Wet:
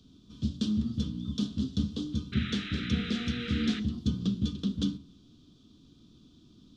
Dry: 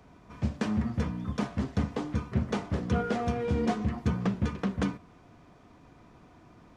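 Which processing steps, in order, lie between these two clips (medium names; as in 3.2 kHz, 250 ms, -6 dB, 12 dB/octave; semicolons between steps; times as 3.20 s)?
FFT filter 120 Hz 0 dB, 260 Hz +6 dB, 810 Hz -23 dB, 1.3 kHz -11 dB, 2.1 kHz -22 dB, 3.4 kHz +14 dB, 10 kHz -2 dB; painted sound noise, 2.32–3.80 s, 1.2–4.1 kHz -38 dBFS; on a send: reverberation RT60 0.45 s, pre-delay 3 ms, DRR 13 dB; on the sum: trim -3.5 dB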